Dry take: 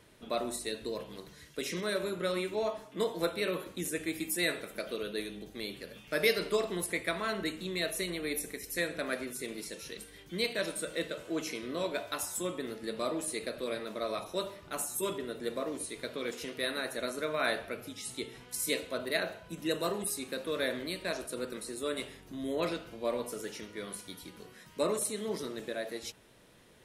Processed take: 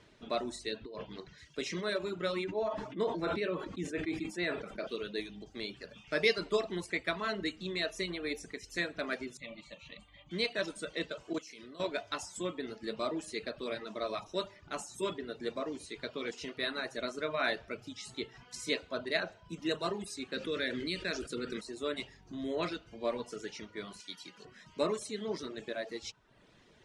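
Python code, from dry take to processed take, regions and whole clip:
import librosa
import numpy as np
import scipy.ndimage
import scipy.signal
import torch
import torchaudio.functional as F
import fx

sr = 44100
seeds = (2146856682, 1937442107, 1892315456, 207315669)

y = fx.chain(x, sr, fx.lowpass(hz=4300.0, slope=12),
    fx.over_compress(threshold_db=-39.0, ratio=-0.5), at=(0.76, 1.38))
y = fx.chain(y, sr, fx.high_shelf(hz=3100.0, db=-12.0),
    fx.sustainer(db_per_s=46.0), at=(2.44, 4.87))
y = fx.chain(y, sr, fx.lowpass(hz=6800.0, slope=24),
    fx.fixed_phaser(hz=1500.0, stages=6),
    fx.small_body(hz=(570.0, 1200.0), ring_ms=90, db=14), at=(9.37, 10.31))
y = fx.chain(y, sr, fx.highpass(hz=48.0, slope=12),
    fx.high_shelf(hz=5600.0, db=11.5),
    fx.level_steps(step_db=16), at=(11.33, 11.8))
y = fx.chain(y, sr, fx.band_shelf(hz=820.0, db=-10.0, octaves=1.1),
    fx.env_flatten(amount_pct=50), at=(20.34, 21.61))
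y = fx.chain(y, sr, fx.highpass(hz=140.0, slope=24),
    fx.tilt_shelf(db=-5.5, hz=1300.0), at=(24.0, 24.45))
y = scipy.signal.sosfilt(scipy.signal.butter(4, 6800.0, 'lowpass', fs=sr, output='sos'), y)
y = fx.dereverb_blind(y, sr, rt60_s=0.66)
y = fx.notch(y, sr, hz=510.0, q=12.0)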